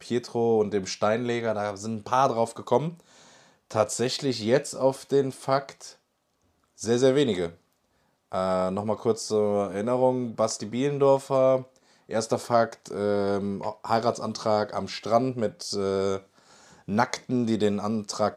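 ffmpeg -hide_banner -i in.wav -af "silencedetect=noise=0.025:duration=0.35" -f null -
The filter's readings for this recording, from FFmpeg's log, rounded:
silence_start: 2.89
silence_end: 3.71 | silence_duration: 0.81
silence_start: 5.86
silence_end: 6.81 | silence_duration: 0.96
silence_start: 7.49
silence_end: 8.32 | silence_duration: 0.83
silence_start: 11.62
silence_end: 12.11 | silence_duration: 0.50
silence_start: 16.18
silence_end: 16.88 | silence_duration: 0.71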